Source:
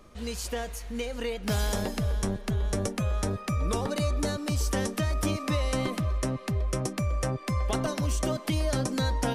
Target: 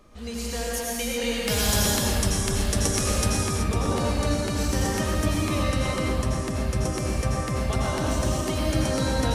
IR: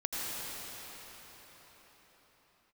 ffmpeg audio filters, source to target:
-filter_complex "[0:a]asettb=1/sr,asplit=3[s0][s1][s2];[s0]atrim=end=0.674[s3];[s1]atrim=start=0.67:end=3.43,asetpts=PTS-STARTPTS,afade=t=in:d=0.004:c=qsin,afade=t=out:st=2.756:d=0.004:c=qsin,highshelf=f=2500:g=11[s4];[s2]atrim=start=3.426[s5];[s3][s4]acrossfade=d=0.004:c1=hsin:c2=qsin[s6];[s6][s5]acrossfade=d=0.004:c1=qsin:c2=hsin[s7];[1:a]atrim=start_sample=2205,afade=t=out:st=0.44:d=0.01,atrim=end_sample=19845[s8];[s7][s8]afir=irnorm=-1:irlink=0"

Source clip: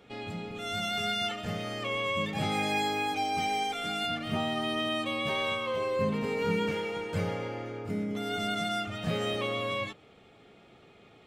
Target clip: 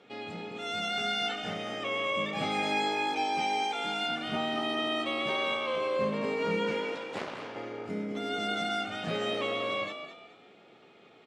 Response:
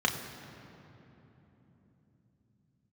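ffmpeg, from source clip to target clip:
-filter_complex "[0:a]asettb=1/sr,asplit=3[s0][s1][s2];[s0]atrim=end=1.384[s3];[s1]atrim=start=1.38:end=2.33,asetpts=PTS-STARTPTS,afade=t=in:d=0.004:c=qsin,afade=t=out:st=0.946:d=0.004:c=qsin,bandreject=f=4300:w=7.1[s4];[s2]atrim=start=2.326[s5];[s3][s4]acrossfade=d=0.004:c1=hsin:c2=qsin[s6];[s6][s5]acrossfade=d=0.004:c1=qsin:c2=hsin,asettb=1/sr,asplit=3[s7][s8][s9];[s7]atrim=end=6.954[s10];[s8]atrim=start=6.95:end=7.56,asetpts=PTS-STARTPTS,afade=t=in:d=0.004:c=qsin,afade=t=out:st=0.606:d=0.004:c=qsin,aeval=exprs='0.119*(cos(1*acos(clip(val(0)/0.119,-1,1)))-cos(1*PI/2))+0.0422*(cos(3*acos(clip(val(0)/0.119,-1,1)))-cos(3*PI/2))+0.0106*(cos(6*acos(clip(val(0)/0.119,-1,1)))-cos(6*PI/2))+0.0119*(cos(7*acos(clip(val(0)/0.119,-1,1)))-cos(7*PI/2))':c=same[s11];[s9]atrim=start=7.556[s12];[s10][s11]acrossfade=d=0.004:c1=hsin:c2=qsin[s13];[s13][s12]acrossfade=d=0.004:c1=qsin:c2=hsin,highpass=210,lowpass=6600,asplit=4[s14][s15][s16][s17];[s15]adelay=212,afreqshift=56,volume=0.335[s18];[s16]adelay=424,afreqshift=112,volume=0.104[s19];[s17]adelay=636,afreqshift=168,volume=0.0324[s20];[s14][s18][s19][s20]amix=inputs=4:normalize=0"

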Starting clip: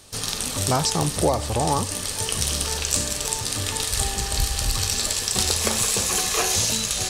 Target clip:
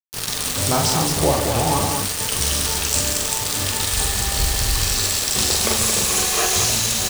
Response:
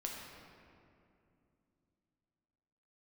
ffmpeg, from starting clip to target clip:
-af "aecho=1:1:43.73|142.9|224.5:0.708|0.398|0.562,acrusher=bits=3:mix=0:aa=0.000001"

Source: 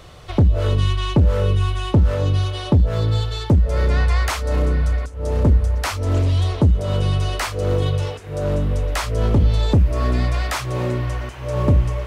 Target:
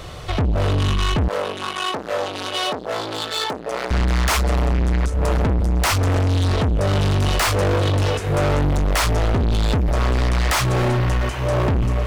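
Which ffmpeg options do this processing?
-filter_complex "[0:a]dynaudnorm=f=690:g=7:m=3.76,alimiter=limit=0.501:level=0:latency=1:release=418,aeval=exprs='(tanh(12.6*val(0)+0.3)-tanh(0.3))/12.6':c=same,asettb=1/sr,asplit=3[s0][s1][s2];[s0]atrim=end=1.284[s3];[s1]atrim=start=1.28:end=3.91,asetpts=PTS-STARTPTS,afade=t=in:d=0.004:c=qsin,afade=t=out:st=2.626:d=0.004:c=qsin,highpass=460[s4];[s2]atrim=start=3.906[s5];[s3][s4]acrossfade=d=0.004:c1=hsin:c2=qsin[s6];[s6][s5]acrossfade=d=0.004:c1=qsin:c2=hsin,aeval=exprs='0.133*(cos(1*acos(clip(val(0)/0.133,-1,1)))-cos(1*PI/2))+0.0266*(cos(5*acos(clip(val(0)/0.133,-1,1)))-cos(5*PI/2))+0.0106*(cos(7*acos(clip(val(0)/0.133,-1,1)))-cos(7*PI/2))':c=same,volume=1.88"

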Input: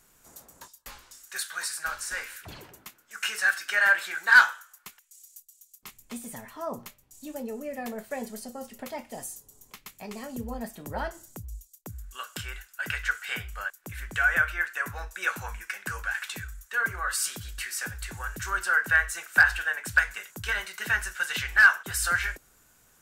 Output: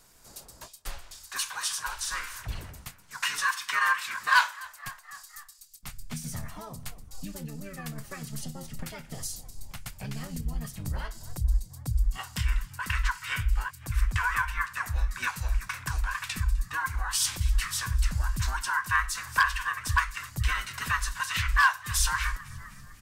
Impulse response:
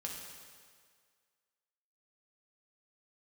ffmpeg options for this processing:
-filter_complex "[0:a]asplit=5[s0][s1][s2][s3][s4];[s1]adelay=254,afreqshift=71,volume=0.0668[s5];[s2]adelay=508,afreqshift=142,volume=0.0403[s6];[s3]adelay=762,afreqshift=213,volume=0.024[s7];[s4]adelay=1016,afreqshift=284,volume=0.0145[s8];[s0][s5][s6][s7][s8]amix=inputs=5:normalize=0,acrossover=split=1700[s9][s10];[s9]acompressor=threshold=0.00794:ratio=16[s11];[s11][s10]amix=inputs=2:normalize=0,asplit=2[s12][s13];[s13]asetrate=29433,aresample=44100,atempo=1.49831,volume=0.891[s14];[s12][s14]amix=inputs=2:normalize=0,asubboost=boost=11:cutoff=110"

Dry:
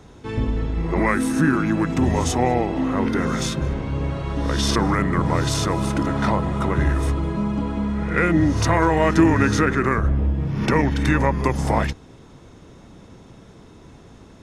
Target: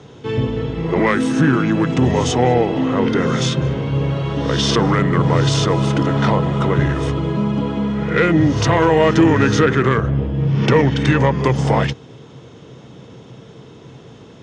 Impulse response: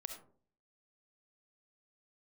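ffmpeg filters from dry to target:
-af "asoftclip=type=tanh:threshold=0.355,highpass=110,equalizer=f=130:t=q:w=4:g=10,equalizer=f=460:t=q:w=4:g=7,equalizer=f=3100:t=q:w=4:g=8,lowpass=f=7300:w=0.5412,lowpass=f=7300:w=1.3066,volume=1.5"

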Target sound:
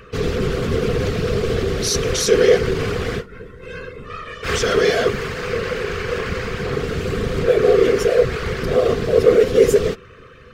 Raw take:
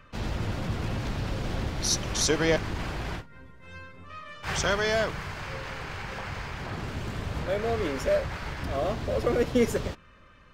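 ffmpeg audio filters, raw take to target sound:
-af "apsyclip=20,afftfilt=real='hypot(re,im)*cos(2*PI*random(0))':imag='hypot(re,im)*sin(2*PI*random(1))':win_size=512:overlap=0.75,superequalizer=7b=3.98:8b=0.708:9b=0.355,volume=0.316"

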